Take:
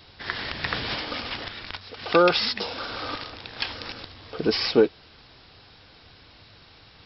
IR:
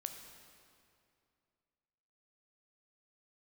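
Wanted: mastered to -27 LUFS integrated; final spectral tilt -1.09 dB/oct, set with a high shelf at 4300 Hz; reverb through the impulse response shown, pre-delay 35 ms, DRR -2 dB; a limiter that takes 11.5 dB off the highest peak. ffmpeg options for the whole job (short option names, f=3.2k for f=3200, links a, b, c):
-filter_complex "[0:a]highshelf=f=4.3k:g=6,alimiter=limit=-18dB:level=0:latency=1,asplit=2[a][b];[1:a]atrim=start_sample=2205,adelay=35[c];[b][c]afir=irnorm=-1:irlink=0,volume=4.5dB[d];[a][d]amix=inputs=2:normalize=0,volume=-1dB"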